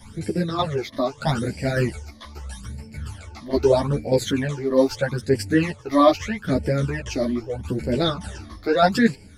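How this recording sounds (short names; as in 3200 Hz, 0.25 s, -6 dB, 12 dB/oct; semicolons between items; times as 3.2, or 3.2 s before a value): phasing stages 12, 0.79 Hz, lowest notch 140–1200 Hz; tremolo saw down 1.7 Hz, depth 55%; a shimmering, thickened sound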